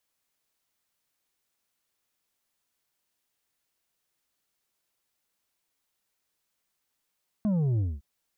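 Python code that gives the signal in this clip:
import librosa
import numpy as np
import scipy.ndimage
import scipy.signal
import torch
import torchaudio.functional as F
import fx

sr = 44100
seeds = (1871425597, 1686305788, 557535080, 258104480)

y = fx.sub_drop(sr, level_db=-23.5, start_hz=220.0, length_s=0.56, drive_db=6.0, fade_s=0.22, end_hz=65.0)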